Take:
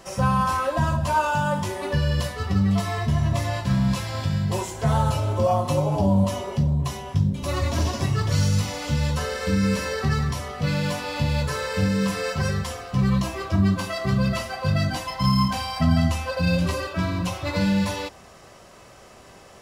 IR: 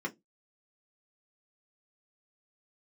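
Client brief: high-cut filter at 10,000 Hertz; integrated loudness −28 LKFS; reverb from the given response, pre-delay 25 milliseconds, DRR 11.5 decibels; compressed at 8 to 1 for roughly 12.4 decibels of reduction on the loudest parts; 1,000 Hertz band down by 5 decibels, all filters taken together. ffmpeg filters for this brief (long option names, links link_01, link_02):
-filter_complex "[0:a]lowpass=10000,equalizer=frequency=1000:width_type=o:gain=-6,acompressor=threshold=-29dB:ratio=8,asplit=2[link_01][link_02];[1:a]atrim=start_sample=2205,adelay=25[link_03];[link_02][link_03]afir=irnorm=-1:irlink=0,volume=-15dB[link_04];[link_01][link_04]amix=inputs=2:normalize=0,volume=4.5dB"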